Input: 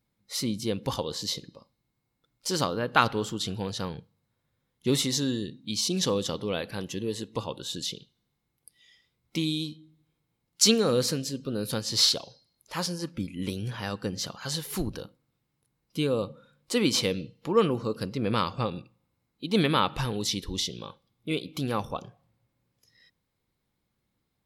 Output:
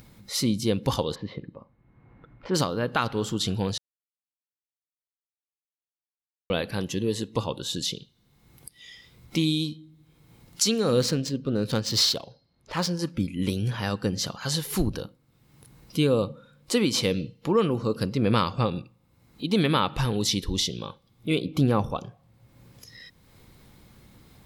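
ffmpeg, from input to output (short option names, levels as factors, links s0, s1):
-filter_complex "[0:a]asplit=3[s0][s1][s2];[s0]afade=t=out:st=1.14:d=0.02[s3];[s1]lowpass=f=2100:w=0.5412,lowpass=f=2100:w=1.3066,afade=t=in:st=1.14:d=0.02,afade=t=out:st=2.54:d=0.02[s4];[s2]afade=t=in:st=2.54:d=0.02[s5];[s3][s4][s5]amix=inputs=3:normalize=0,asettb=1/sr,asplit=3[s6][s7][s8];[s6]atrim=end=11.004[s9];[s7]atrim=start=11:end=12.99,asetpts=PTS-STARTPTS,afade=t=in:d=0.004:c=qsin,afade=t=out:st=1.986:d=0.004:c=qsin,adynamicsmooth=sensitivity=7.5:basefreq=2900[s10];[s8]atrim=start=12.986[s11];[s9][s10]acrossfade=d=0.004:c1=hsin:c2=qsin[s12];[s12][s11]acrossfade=d=0.004:c1=qsin:c2=hsin,asettb=1/sr,asplit=3[s13][s14][s15];[s13]atrim=end=21.384[s16];[s14]atrim=start=21.38:end=21.9,asetpts=PTS-STARTPTS,afade=t=in:d=0.004:c=qsin,afade=t=out:st=0.516:d=0.004:c=qsin,tiltshelf=f=1500:g=5[s17];[s15]atrim=start=21.896[s18];[s16][s17]acrossfade=d=0.004:c1=hsin:c2=qsin[s19];[s19][s18]acrossfade=d=0.004:c1=qsin:c2=hsin,asplit=3[s20][s21][s22];[s20]atrim=end=3.78,asetpts=PTS-STARTPTS,afade=t=out:st=3.776:d=0.004:c=hsin[s23];[s21]atrim=start=3.78:end=6.5,asetpts=PTS-STARTPTS,volume=0[s24];[s22]atrim=start=6.5,asetpts=PTS-STARTPTS,afade=t=in:d=0.004:c=hsin[s25];[s23][s24][s25]concat=n=3:v=0:a=1,lowshelf=f=210:g=4,acompressor=mode=upward:threshold=0.0112:ratio=2.5,alimiter=limit=0.188:level=0:latency=1:release=371,volume=1.5"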